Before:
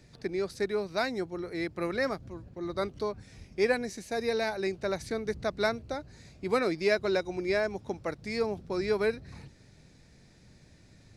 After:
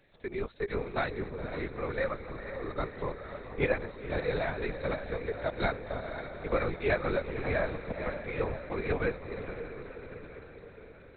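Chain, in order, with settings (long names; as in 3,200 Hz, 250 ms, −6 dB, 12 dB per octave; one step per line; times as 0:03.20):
high-pass filter 350 Hz
feedback delay with all-pass diffusion 508 ms, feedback 60%, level −8 dB
linear-prediction vocoder at 8 kHz whisper
level −1 dB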